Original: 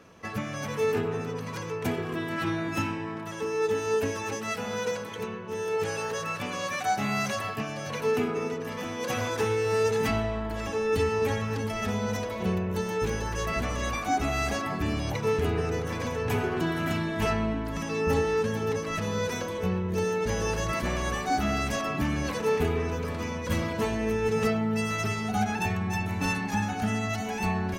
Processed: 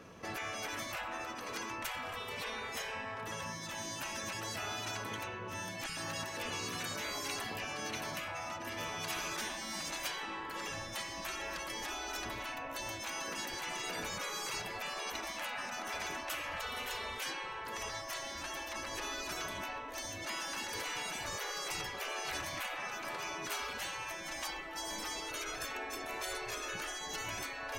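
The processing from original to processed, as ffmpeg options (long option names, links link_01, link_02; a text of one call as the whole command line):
ffmpeg -i in.wav -filter_complex "[0:a]asettb=1/sr,asplit=3[link_01][link_02][link_03];[link_01]atrim=end=5.864[link_04];[link_02]atrim=start=5.86:end=9.81,asetpts=PTS-STARTPTS,afade=type=in:duration=0.004:curve=qsin,afade=type=out:start_time=3.946:duration=0.004:curve=qsin,acrossover=split=190|1300[link_05][link_06][link_07];[link_05]adelay=30[link_08];[link_06]adelay=110[link_09];[link_08][link_09][link_07]amix=inputs=3:normalize=0,atrim=end_sample=174195[link_10];[link_03]atrim=start=9.806[link_11];[link_04][link_10]acrossfade=duration=0.004:curve1=hsin:curve2=qsin[link_12];[link_12][link_11]acrossfade=duration=0.004:curve1=qsin:curve2=hsin,afftfilt=real='re*lt(hypot(re,im),0.0562)':imag='im*lt(hypot(re,im),0.0562)':win_size=1024:overlap=0.75" out.wav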